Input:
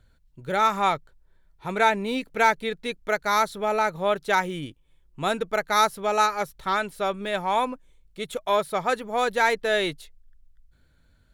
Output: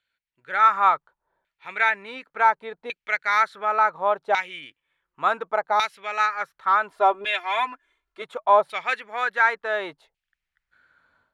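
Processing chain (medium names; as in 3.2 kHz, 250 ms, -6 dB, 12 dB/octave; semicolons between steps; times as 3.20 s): 6.90–8.22 s: comb 2.9 ms, depth 99%; level rider gain up to 14 dB; LFO band-pass saw down 0.69 Hz 750–2700 Hz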